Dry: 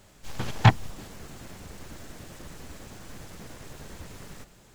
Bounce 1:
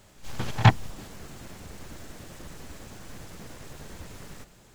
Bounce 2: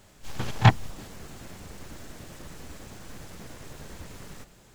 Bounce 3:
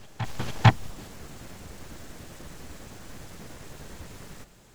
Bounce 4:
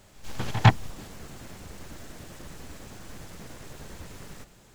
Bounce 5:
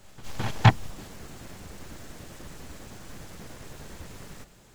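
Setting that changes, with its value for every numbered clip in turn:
backwards echo, delay time: 67, 33, 450, 104, 213 milliseconds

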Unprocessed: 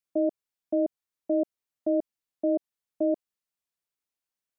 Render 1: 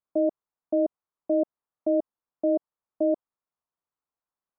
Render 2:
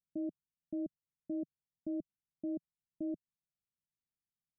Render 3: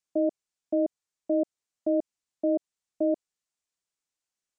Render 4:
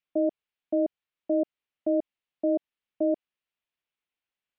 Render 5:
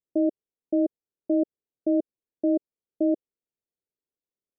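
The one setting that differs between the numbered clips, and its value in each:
low-pass with resonance, frequency: 1,100, 160, 7,500, 2,900, 440 Hertz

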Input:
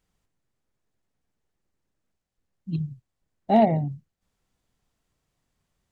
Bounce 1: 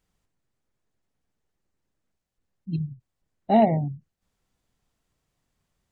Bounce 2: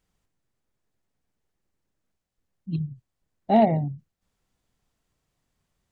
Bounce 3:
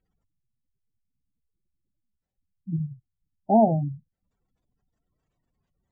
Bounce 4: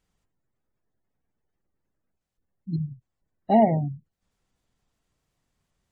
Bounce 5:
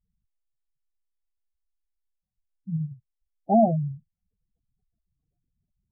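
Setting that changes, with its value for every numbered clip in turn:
gate on every frequency bin, under each frame's peak: −45, −60, −20, −35, −10 decibels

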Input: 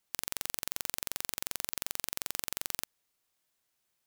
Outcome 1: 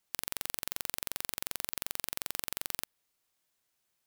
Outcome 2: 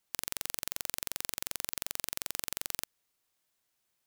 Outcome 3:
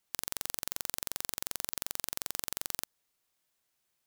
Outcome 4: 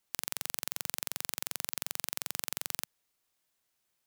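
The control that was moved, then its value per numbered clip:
dynamic equaliser, frequency: 6,600, 740, 2,400, 150 Hertz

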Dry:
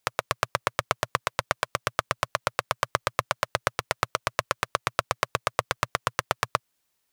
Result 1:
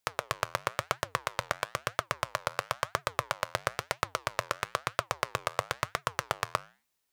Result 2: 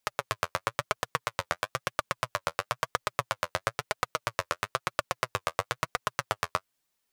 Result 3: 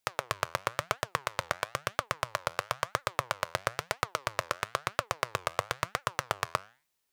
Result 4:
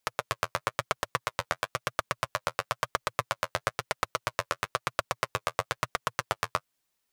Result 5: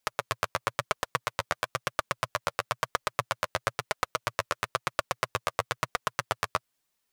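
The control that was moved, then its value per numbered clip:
flanger, regen: −86, +31, +87, −27, +6%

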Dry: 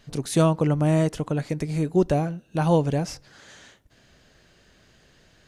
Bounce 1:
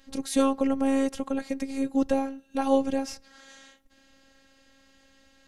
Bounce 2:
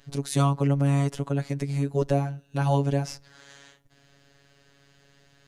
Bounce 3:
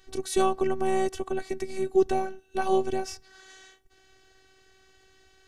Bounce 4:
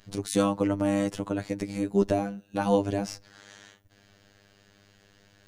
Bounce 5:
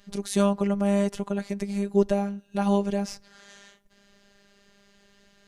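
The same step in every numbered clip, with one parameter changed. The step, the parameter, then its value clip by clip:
phases set to zero, frequency: 270, 140, 380, 100, 200 Hertz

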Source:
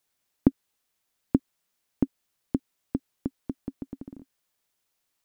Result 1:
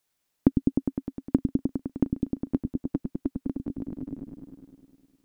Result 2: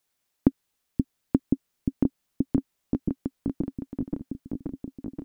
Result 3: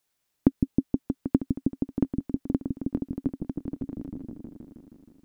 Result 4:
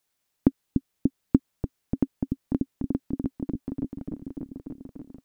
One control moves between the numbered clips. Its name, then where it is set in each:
echo whose low-pass opens from repeat to repeat, delay time: 102, 528, 158, 293 milliseconds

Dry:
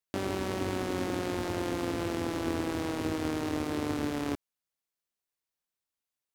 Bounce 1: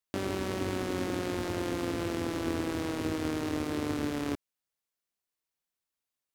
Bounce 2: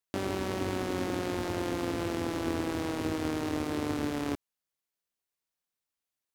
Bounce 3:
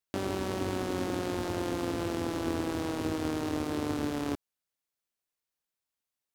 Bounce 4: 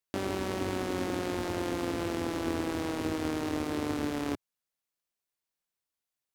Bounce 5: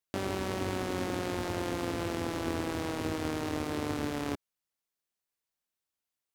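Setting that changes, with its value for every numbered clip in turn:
dynamic equaliser, frequency: 810, 8,600, 2,100, 120, 310 Hertz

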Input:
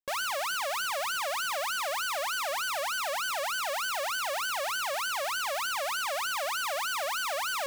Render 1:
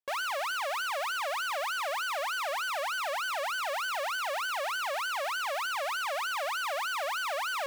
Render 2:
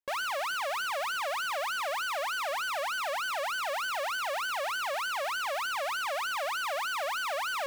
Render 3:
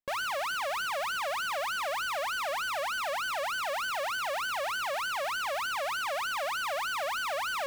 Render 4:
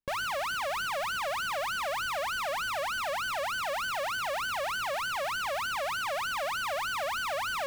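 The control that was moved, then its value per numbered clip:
bass and treble, bass: −13, −4, +4, +13 decibels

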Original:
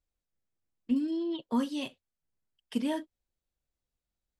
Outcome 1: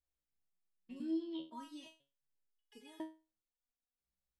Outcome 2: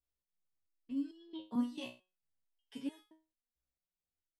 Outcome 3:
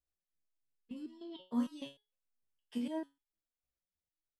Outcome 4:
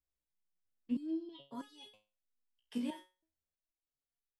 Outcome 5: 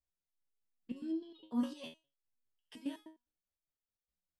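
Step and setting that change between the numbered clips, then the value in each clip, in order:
step-sequenced resonator, speed: 2, 4.5, 6.6, 3.1, 9.8 Hertz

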